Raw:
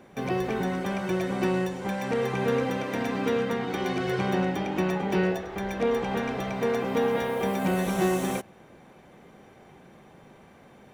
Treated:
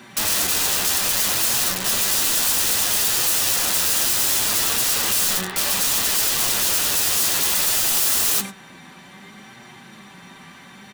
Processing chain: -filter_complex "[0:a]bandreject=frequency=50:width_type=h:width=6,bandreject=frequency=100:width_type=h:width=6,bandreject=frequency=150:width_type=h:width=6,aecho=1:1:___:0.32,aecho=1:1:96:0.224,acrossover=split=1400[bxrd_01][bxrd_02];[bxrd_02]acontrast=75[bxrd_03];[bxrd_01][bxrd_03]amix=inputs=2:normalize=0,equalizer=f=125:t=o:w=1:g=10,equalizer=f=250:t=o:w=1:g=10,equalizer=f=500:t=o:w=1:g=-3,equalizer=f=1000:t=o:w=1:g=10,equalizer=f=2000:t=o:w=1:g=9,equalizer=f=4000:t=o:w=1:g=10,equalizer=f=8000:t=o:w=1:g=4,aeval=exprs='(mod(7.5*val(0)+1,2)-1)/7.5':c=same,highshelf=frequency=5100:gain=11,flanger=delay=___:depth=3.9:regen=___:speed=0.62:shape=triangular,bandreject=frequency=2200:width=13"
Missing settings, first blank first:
5.2, 8.1, 49